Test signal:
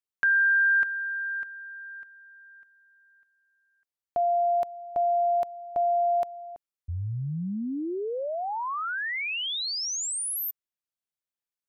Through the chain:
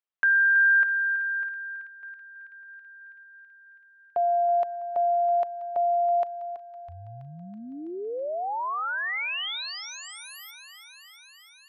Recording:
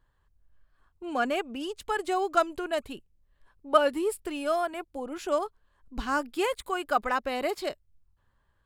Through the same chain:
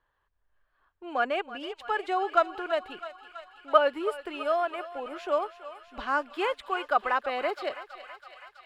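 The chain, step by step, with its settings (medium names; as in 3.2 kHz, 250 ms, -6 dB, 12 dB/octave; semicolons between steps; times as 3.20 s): three-band isolator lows -14 dB, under 390 Hz, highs -19 dB, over 3.9 kHz; on a send: thinning echo 327 ms, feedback 79%, high-pass 720 Hz, level -13 dB; on the sum: trim +1.5 dB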